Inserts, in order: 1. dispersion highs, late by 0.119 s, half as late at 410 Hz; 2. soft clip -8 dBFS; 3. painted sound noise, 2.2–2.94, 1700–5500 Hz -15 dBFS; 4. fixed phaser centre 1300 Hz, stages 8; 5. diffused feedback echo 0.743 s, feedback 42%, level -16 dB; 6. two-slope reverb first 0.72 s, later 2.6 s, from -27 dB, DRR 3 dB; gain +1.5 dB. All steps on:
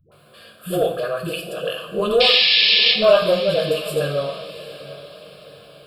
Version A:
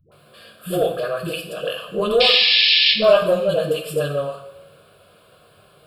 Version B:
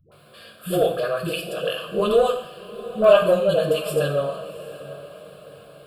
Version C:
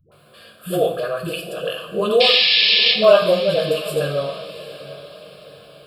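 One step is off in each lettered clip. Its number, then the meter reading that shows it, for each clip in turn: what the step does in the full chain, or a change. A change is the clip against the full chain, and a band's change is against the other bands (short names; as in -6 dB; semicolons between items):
5, momentary loudness spread change -4 LU; 3, 4 kHz band -17.0 dB; 2, distortion -19 dB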